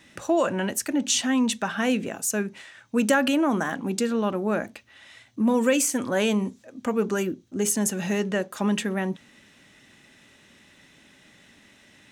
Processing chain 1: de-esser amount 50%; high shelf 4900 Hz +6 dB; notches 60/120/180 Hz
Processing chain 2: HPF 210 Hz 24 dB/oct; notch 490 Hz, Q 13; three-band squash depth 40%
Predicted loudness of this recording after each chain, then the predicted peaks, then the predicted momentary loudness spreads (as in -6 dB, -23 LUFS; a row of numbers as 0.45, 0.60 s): -25.5, -26.5 LUFS; -8.0, -11.0 dBFS; 8, 20 LU